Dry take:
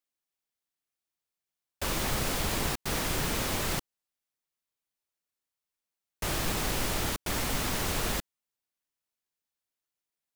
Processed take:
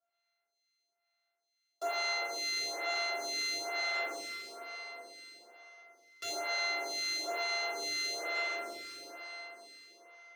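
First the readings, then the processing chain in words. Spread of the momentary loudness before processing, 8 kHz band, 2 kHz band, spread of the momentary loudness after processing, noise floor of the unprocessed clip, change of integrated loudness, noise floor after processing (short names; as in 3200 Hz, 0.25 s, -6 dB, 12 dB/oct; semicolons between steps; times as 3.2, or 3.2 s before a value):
4 LU, -6.0 dB, +2.0 dB, 18 LU, under -85 dBFS, -4.0 dB, -85 dBFS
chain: sample sorter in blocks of 64 samples; three-band isolator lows -21 dB, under 460 Hz, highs -17 dB, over 7000 Hz; on a send: flutter echo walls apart 7.3 m, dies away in 1 s; on the sum: two-slope reverb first 0.25 s, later 4.7 s, from -19 dB, DRR -5.5 dB; limiter -25 dBFS, peak gain reduction 12 dB; HPF 55 Hz; resonant low shelf 230 Hz -11.5 dB, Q 3; photocell phaser 1.1 Hz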